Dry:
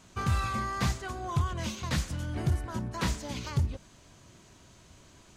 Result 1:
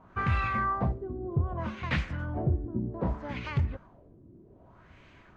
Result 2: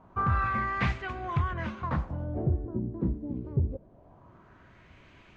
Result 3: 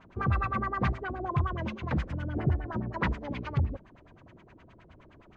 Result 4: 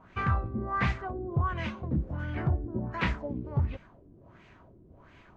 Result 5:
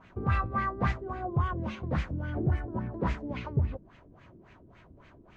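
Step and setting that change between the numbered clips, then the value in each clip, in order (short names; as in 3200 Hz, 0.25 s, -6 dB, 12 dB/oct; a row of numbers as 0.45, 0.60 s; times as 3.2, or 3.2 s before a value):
LFO low-pass, rate: 0.64, 0.24, 9.6, 1.4, 3.6 Hz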